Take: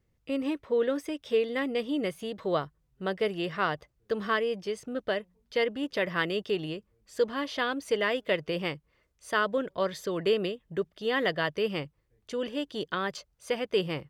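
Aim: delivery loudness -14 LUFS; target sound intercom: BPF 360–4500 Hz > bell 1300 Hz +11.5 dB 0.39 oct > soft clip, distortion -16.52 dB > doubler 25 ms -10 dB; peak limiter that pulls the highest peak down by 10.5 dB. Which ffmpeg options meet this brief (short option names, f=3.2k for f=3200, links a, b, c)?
-filter_complex "[0:a]alimiter=limit=-23.5dB:level=0:latency=1,highpass=360,lowpass=4.5k,equalizer=f=1.3k:t=o:w=0.39:g=11.5,asoftclip=threshold=-23.5dB,asplit=2[a][b];[b]adelay=25,volume=-10dB[c];[a][c]amix=inputs=2:normalize=0,volume=21dB"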